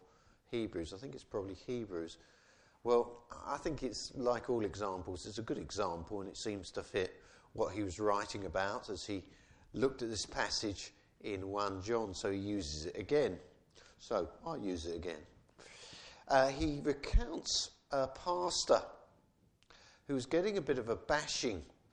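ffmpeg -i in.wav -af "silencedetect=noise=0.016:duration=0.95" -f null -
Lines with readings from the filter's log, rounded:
silence_start: 15.15
silence_end: 16.30 | silence_duration: 1.15
silence_start: 18.82
silence_end: 20.10 | silence_duration: 1.28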